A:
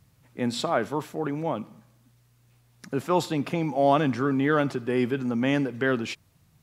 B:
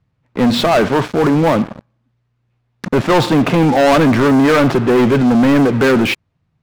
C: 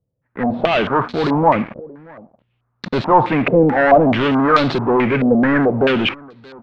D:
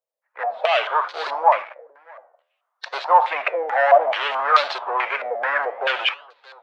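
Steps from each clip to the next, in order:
Bessel low-pass filter 2,400 Hz, order 2; leveller curve on the samples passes 5; in parallel at +0.5 dB: brickwall limiter −20.5 dBFS, peak gain reduction 11 dB
automatic gain control; single-tap delay 628 ms −23.5 dB; low-pass on a step sequencer 4.6 Hz 520–4,100 Hz; level −11.5 dB
spectral magnitudes quantised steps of 15 dB; flanger 0.64 Hz, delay 5.2 ms, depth 8.6 ms, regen −90%; Butterworth high-pass 590 Hz 36 dB per octave; level +4 dB

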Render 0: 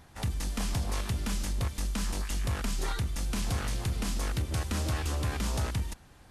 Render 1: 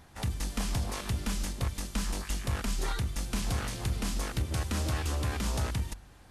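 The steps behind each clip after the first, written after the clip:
hum removal 49.06 Hz, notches 3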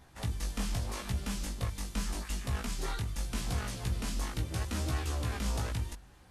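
chorus effect 0.81 Hz, delay 15.5 ms, depth 4 ms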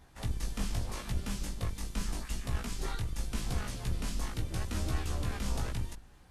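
sub-octave generator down 2 octaves, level 0 dB
level −2 dB

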